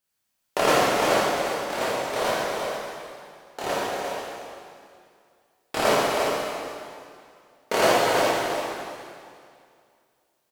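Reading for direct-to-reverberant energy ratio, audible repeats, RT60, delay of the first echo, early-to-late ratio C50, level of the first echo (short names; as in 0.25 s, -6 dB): -8.5 dB, 1, 2.3 s, 0.349 s, -4.5 dB, -6.0 dB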